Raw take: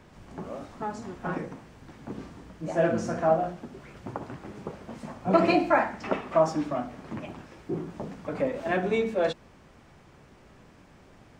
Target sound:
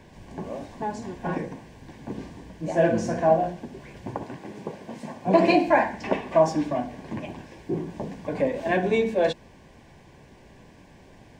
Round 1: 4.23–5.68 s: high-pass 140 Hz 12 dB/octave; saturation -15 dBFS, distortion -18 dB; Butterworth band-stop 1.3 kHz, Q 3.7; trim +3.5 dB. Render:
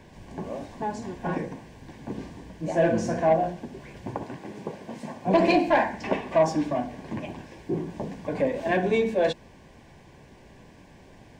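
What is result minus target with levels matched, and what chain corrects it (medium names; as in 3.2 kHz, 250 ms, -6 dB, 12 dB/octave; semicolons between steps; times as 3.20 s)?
saturation: distortion +20 dB
4.23–5.68 s: high-pass 140 Hz 12 dB/octave; saturation -3 dBFS, distortion -38 dB; Butterworth band-stop 1.3 kHz, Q 3.7; trim +3.5 dB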